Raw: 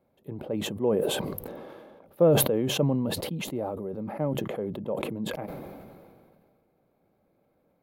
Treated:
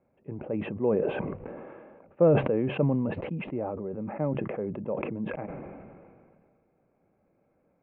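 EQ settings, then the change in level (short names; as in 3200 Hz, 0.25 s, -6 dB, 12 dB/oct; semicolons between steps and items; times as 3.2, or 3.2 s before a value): Chebyshev low-pass 2600 Hz, order 5; 0.0 dB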